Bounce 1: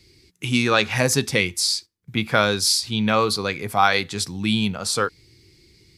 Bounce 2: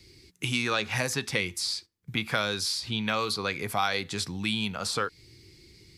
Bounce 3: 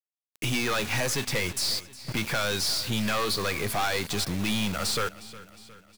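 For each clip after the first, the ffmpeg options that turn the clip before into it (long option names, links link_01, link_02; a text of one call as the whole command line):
ffmpeg -i in.wav -filter_complex "[0:a]acrossover=split=810|1700|3700[link_01][link_02][link_03][link_04];[link_01]acompressor=threshold=-32dB:ratio=4[link_05];[link_02]acompressor=threshold=-34dB:ratio=4[link_06];[link_03]acompressor=threshold=-33dB:ratio=4[link_07];[link_04]acompressor=threshold=-36dB:ratio=4[link_08];[link_05][link_06][link_07][link_08]amix=inputs=4:normalize=0" out.wav
ffmpeg -i in.wav -af "acrusher=bits=6:mix=0:aa=0.000001,aeval=exprs='(tanh(35.5*val(0)+0.45)-tanh(0.45))/35.5':channel_layout=same,aecho=1:1:360|720|1080|1440|1800:0.126|0.068|0.0367|0.0198|0.0107,volume=7.5dB" out.wav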